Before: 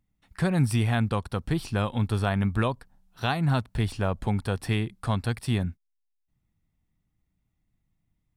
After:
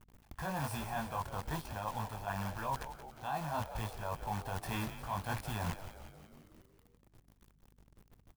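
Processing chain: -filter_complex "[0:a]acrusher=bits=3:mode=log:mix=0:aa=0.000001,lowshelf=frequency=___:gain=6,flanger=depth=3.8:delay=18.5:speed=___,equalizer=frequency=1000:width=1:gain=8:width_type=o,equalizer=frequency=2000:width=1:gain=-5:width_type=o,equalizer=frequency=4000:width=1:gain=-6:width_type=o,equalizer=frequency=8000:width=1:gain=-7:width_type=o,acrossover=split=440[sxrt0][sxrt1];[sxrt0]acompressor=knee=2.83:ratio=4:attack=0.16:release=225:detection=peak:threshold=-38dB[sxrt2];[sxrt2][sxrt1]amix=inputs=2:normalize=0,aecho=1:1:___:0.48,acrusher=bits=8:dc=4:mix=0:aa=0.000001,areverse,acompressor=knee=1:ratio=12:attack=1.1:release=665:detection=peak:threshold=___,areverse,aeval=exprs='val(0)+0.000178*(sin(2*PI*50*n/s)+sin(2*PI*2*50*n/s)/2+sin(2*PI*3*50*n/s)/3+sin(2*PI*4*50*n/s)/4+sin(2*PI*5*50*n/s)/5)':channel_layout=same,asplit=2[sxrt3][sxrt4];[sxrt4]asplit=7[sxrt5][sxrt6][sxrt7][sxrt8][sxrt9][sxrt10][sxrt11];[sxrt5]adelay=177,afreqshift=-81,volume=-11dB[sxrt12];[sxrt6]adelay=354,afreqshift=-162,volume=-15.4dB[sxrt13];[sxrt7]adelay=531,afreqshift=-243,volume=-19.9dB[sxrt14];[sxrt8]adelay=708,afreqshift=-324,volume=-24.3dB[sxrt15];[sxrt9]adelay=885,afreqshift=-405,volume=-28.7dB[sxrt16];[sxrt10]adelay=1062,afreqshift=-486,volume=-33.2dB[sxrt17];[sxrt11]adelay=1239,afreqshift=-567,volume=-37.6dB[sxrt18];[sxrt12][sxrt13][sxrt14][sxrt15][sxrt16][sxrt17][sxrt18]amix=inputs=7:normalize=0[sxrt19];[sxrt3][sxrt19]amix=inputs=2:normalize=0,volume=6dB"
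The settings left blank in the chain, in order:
240, 0.52, 1.2, -36dB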